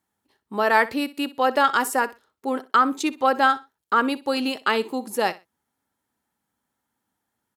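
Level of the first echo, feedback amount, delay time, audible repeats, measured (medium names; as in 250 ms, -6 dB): -18.0 dB, 21%, 62 ms, 2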